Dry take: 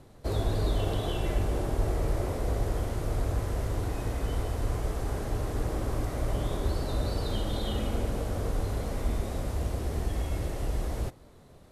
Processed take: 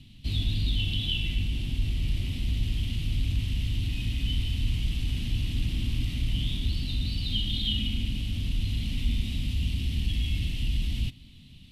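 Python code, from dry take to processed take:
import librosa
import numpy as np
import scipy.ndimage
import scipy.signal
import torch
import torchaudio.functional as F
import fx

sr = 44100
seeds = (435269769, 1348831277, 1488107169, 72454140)

p1 = 10.0 ** (-32.0 / 20.0) * np.tanh(x / 10.0 ** (-32.0 / 20.0))
p2 = x + (p1 * librosa.db_to_amplitude(-5.0))
p3 = fx.curve_eq(p2, sr, hz=(250.0, 460.0, 1500.0, 2900.0, 6600.0), db=(0, -29, -20, 14, -7))
y = fx.rider(p3, sr, range_db=10, speed_s=2.0)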